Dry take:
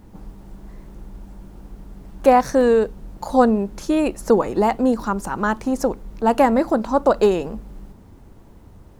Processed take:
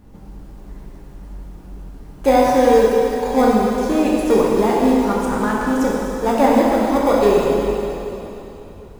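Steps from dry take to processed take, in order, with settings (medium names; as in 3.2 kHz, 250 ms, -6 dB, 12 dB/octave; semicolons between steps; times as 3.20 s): in parallel at -12 dB: sample-and-hold 31×; on the sum: plate-style reverb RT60 3.2 s, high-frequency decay 1×, DRR -4.5 dB; trim -4 dB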